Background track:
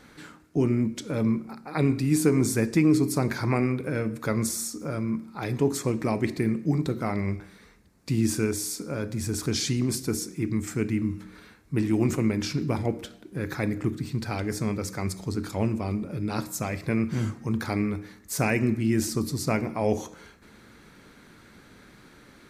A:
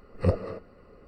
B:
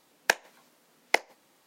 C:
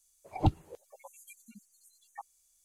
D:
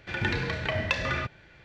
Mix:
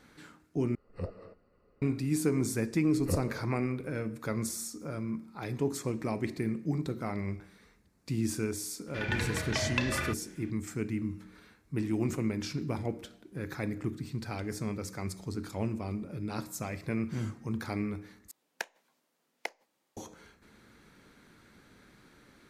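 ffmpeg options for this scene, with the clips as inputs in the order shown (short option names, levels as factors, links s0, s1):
-filter_complex "[1:a]asplit=2[s0][s1];[0:a]volume=0.447,asplit=3[s2][s3][s4];[s2]atrim=end=0.754[s5];[s0]atrim=end=1.07,asetpts=PTS-STARTPTS,volume=0.2[s6];[s3]atrim=start=1.816:end=18.314[s7];[2:a]atrim=end=1.66,asetpts=PTS-STARTPTS,volume=0.2[s8];[s4]atrim=start=19.966[s9];[s1]atrim=end=1.07,asetpts=PTS-STARTPTS,volume=0.398,afade=t=in:d=0.004:c=hsin,afade=t=out:st=1.066:d=0.004:c=hsin,adelay=2850[s10];[4:a]atrim=end=1.64,asetpts=PTS-STARTPTS,volume=0.631,afade=t=in:d=0.004:c=hsin,afade=t=out:st=1.636:d=0.004:c=hsin,adelay=8870[s11];[s5][s6]acrossfade=d=0.004:c1=hsin:c2=hsin[s12];[s12][s7]acrossfade=d=0.004:c1=hsin:c2=hsin[s13];[s13][s8]acrossfade=d=0.004:c1=hsin:c2=hsin[s14];[s14][s9]acrossfade=d=0.004:c1=hsin:c2=hsin[s15];[s15][s10][s11]amix=inputs=3:normalize=0"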